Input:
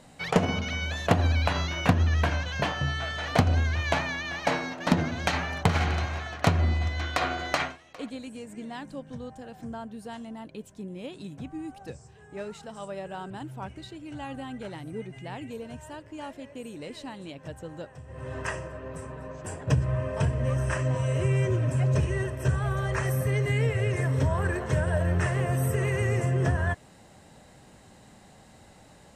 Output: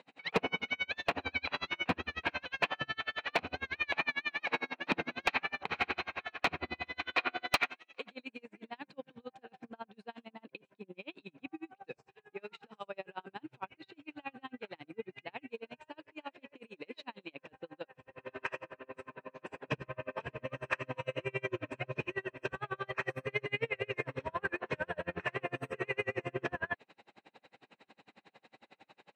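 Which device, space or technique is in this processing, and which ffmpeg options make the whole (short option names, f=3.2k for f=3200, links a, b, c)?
helicopter radio: -filter_complex "[0:a]highpass=330,lowpass=2.8k,aeval=exprs='val(0)*pow(10,-37*(0.5-0.5*cos(2*PI*11*n/s))/20)':c=same,asoftclip=type=hard:threshold=-23dB,asettb=1/sr,asplit=3[a][b][c];[a]atrim=end=7.514[d];[b]atrim=start=7.51:end=8.1,asetpts=PTS-STARTPTS,afade=t=in:d=0.004:c=qsin,afade=t=out:st=0.586:d=0.004:c=qsin,aemphasis=mode=production:type=50kf[e];[c]atrim=start=8.096[f];[d][e]acrossfade=d=0.004:c1=hsin:c2=qsin[g];[g][f]acrossfade=d=0.004:c1=qsin:c2=hsin,equalizer=f=630:t=o:w=0.33:g=-5,equalizer=f=2.5k:t=o:w=0.33:g=11,equalizer=f=4k:t=o:w=0.33:g=7,volume=1.5dB"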